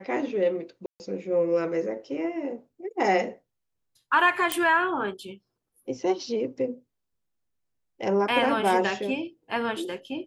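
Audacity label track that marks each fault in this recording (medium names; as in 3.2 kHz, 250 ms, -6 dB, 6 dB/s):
0.860000	1.000000	dropout 139 ms
4.520000	4.520000	pop -8 dBFS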